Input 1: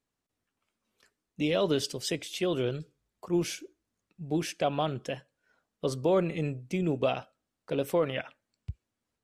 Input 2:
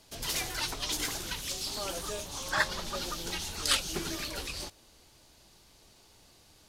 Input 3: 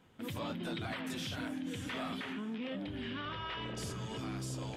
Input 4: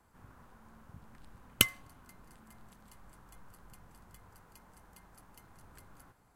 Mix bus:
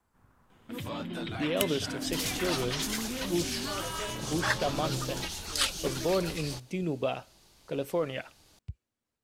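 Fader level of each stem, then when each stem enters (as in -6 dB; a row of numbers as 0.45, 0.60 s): -3.0, -1.0, +2.5, -7.0 dB; 0.00, 1.90, 0.50, 0.00 s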